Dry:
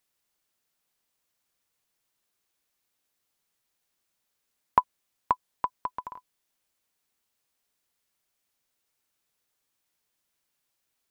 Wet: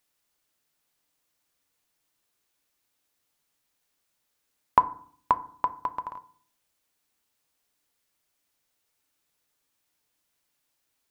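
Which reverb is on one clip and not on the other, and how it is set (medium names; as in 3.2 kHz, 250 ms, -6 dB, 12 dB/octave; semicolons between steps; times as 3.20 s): FDN reverb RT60 0.52 s, low-frequency decay 1.45×, high-frequency decay 0.45×, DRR 11 dB; trim +2 dB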